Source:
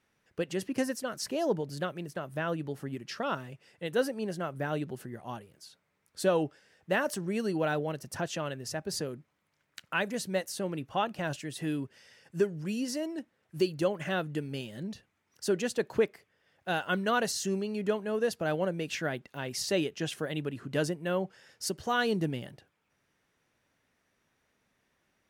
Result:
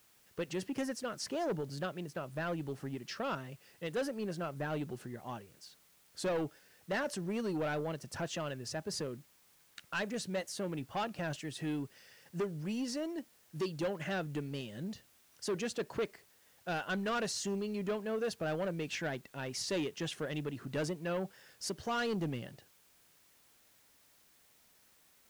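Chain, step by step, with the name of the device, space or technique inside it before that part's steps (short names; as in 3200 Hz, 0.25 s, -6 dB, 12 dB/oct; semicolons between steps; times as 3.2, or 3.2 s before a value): compact cassette (soft clip -27.5 dBFS, distortion -11 dB; LPF 8800 Hz; wow and flutter; white noise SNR 28 dB); gain -2 dB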